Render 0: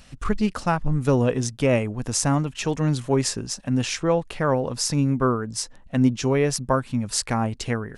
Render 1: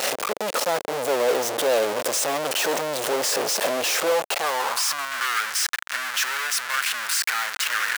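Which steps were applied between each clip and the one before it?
one-bit comparator; high-pass sweep 520 Hz -> 1.5 kHz, 4.02–5.23 s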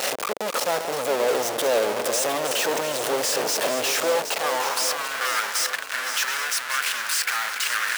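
backward echo that repeats 391 ms, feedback 65%, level -9 dB; trim -1 dB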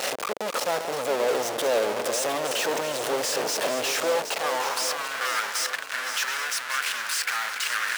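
treble shelf 9.6 kHz -5 dB; trim -2 dB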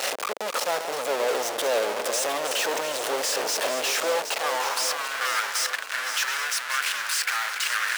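high-pass 480 Hz 6 dB/octave; trim +1.5 dB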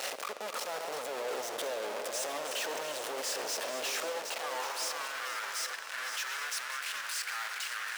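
peak limiter -21 dBFS, peak gain reduction 9 dB; on a send at -10 dB: reverberation RT60 3.8 s, pre-delay 25 ms; on the sum: trim -6.5 dB

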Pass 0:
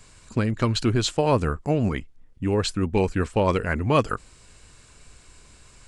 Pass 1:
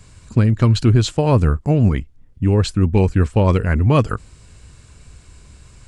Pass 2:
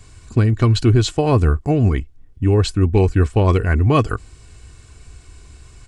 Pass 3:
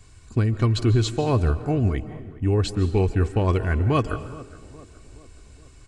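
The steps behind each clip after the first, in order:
peaking EQ 85 Hz +11.5 dB 2.8 oct; trim +1 dB
comb 2.7 ms, depth 44%
tape echo 419 ms, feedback 61%, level -16.5 dB, low-pass 1.2 kHz; on a send at -12.5 dB: reverberation RT60 0.90 s, pre-delay 105 ms; on the sum: trim -6 dB

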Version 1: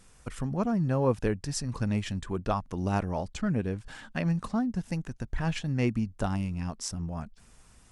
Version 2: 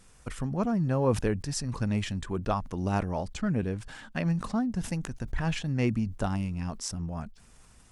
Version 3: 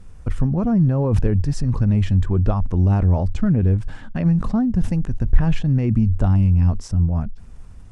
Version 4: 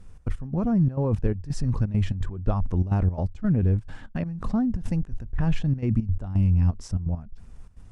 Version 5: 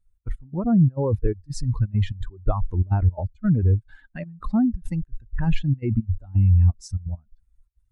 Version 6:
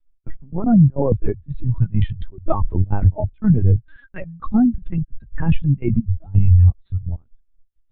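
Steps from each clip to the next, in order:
decay stretcher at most 120 dB/s
peaking EQ 91 Hz +8 dB 0.22 oct; peak limiter -20.5 dBFS, peak gain reduction 7.5 dB; tilt EQ -3 dB/octave; trim +4 dB
trance gate "xx.x..xxxx." 170 bpm -12 dB; trim -4.5 dB
expander on every frequency bin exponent 2; trim +6 dB
vibrato 0.4 Hz 21 cents; LPC vocoder at 8 kHz pitch kept; trim +5 dB

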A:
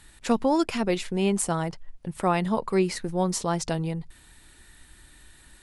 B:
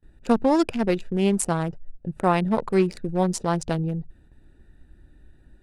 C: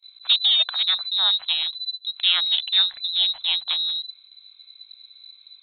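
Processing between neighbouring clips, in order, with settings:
local Wiener filter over 41 samples; gate with hold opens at -48 dBFS; trim +3.5 dB
frequency inversion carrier 4 kHz; resonant low shelf 520 Hz -12 dB, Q 3; hum notches 60/120/180/240 Hz

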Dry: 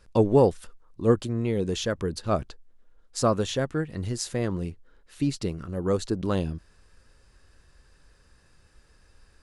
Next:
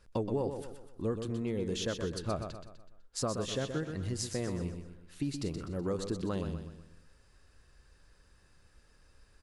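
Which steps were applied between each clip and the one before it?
compression 6:1, threshold -25 dBFS, peak gain reduction 11 dB; on a send: feedback delay 125 ms, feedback 44%, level -7.5 dB; on the sum: trim -5 dB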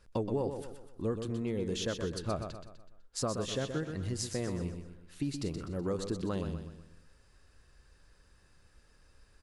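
no audible change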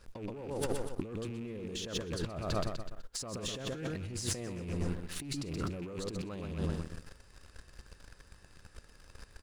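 rattle on loud lows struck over -39 dBFS, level -40 dBFS; waveshaping leveller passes 2; compressor with a negative ratio -38 dBFS, ratio -1

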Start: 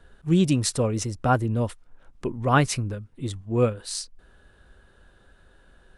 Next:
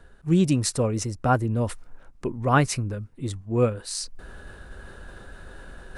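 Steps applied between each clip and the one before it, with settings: peaking EQ 3.3 kHz -5 dB 0.47 oct; reverse; upward compressor, threshold -28 dBFS; reverse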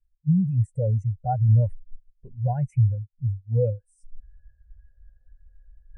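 peak limiter -19 dBFS, peak gain reduction 11.5 dB; static phaser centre 1.2 kHz, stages 6; spectral contrast expander 2.5:1; trim +8 dB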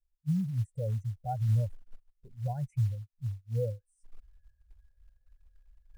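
short-mantissa float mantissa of 4-bit; trim -9 dB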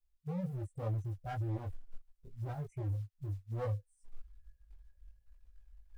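hard clipper -33 dBFS, distortion -7 dB; chorus voices 4, 0.77 Hz, delay 20 ms, depth 2.6 ms; trim +2 dB

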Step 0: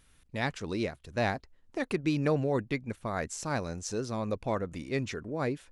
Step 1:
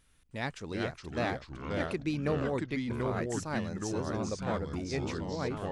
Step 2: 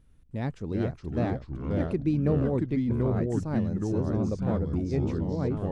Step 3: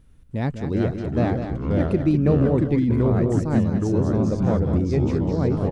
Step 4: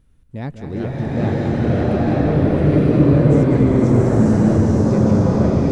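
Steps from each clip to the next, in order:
ever faster or slower copies 310 ms, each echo -3 st, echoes 3; trim -4 dB
tilt shelf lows +10 dB, about 700 Hz
delay 200 ms -8.5 dB; trim +6.5 dB
swelling reverb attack 940 ms, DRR -8.5 dB; trim -3 dB

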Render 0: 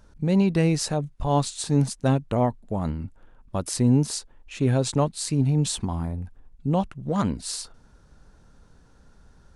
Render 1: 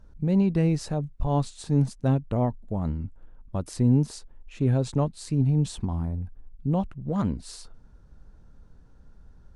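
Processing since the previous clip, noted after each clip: tilt EQ -2 dB/octave; trim -6 dB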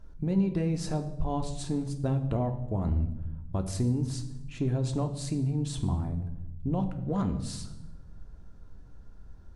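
compression, threshold -25 dBFS, peak gain reduction 9.5 dB; reverberation RT60 0.95 s, pre-delay 3 ms, DRR 5.5 dB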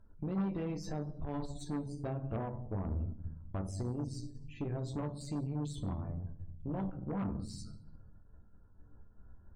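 loudest bins only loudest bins 64; chord resonator D2 sus4, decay 0.2 s; Chebyshev shaper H 5 -19 dB, 8 -20 dB, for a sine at -24 dBFS; trim -1.5 dB

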